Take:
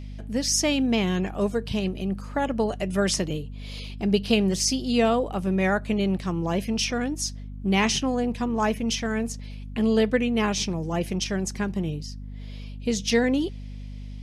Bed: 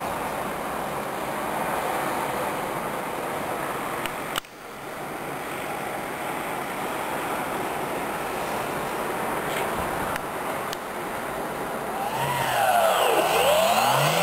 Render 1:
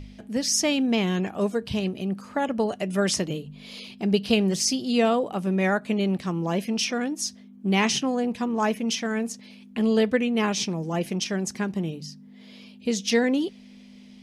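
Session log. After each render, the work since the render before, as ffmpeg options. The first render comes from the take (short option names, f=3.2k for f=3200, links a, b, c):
-af "bandreject=f=50:t=h:w=4,bandreject=f=100:t=h:w=4,bandreject=f=150:t=h:w=4"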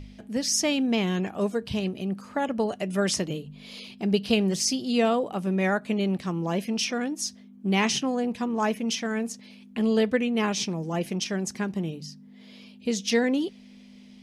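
-af "volume=-1.5dB"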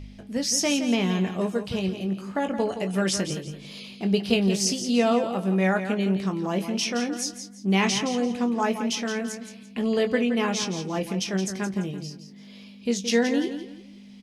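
-filter_complex "[0:a]asplit=2[a][b];[b]adelay=21,volume=-8dB[c];[a][c]amix=inputs=2:normalize=0,aecho=1:1:170|340|510:0.335|0.0971|0.0282"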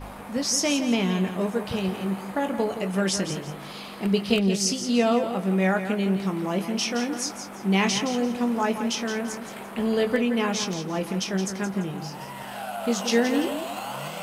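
-filter_complex "[1:a]volume=-13dB[a];[0:a][a]amix=inputs=2:normalize=0"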